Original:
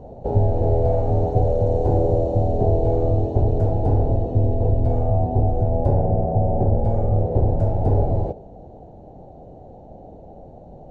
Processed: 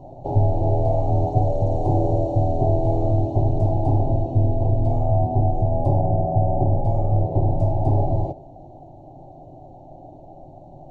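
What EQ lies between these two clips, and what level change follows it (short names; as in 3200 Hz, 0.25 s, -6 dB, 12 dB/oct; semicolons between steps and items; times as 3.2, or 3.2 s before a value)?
fixed phaser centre 310 Hz, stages 8; +2.0 dB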